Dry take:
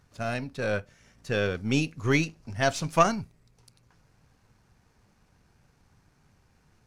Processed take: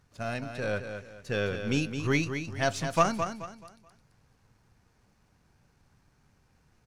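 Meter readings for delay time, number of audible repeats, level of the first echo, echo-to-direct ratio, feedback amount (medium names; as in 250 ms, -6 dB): 215 ms, 3, -8.0 dB, -7.5 dB, 32%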